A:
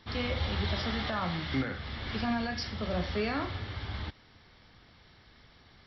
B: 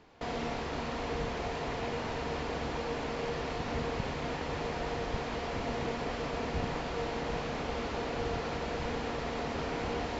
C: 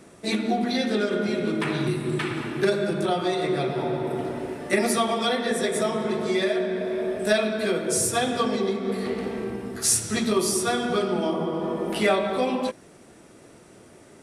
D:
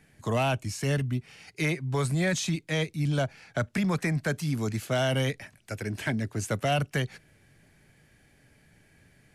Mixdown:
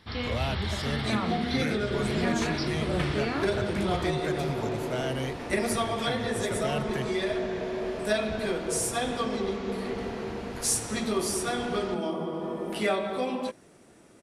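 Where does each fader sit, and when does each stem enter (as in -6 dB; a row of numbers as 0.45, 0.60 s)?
+0.5, -4.5, -5.5, -6.5 dB; 0.00, 1.75, 0.80, 0.00 s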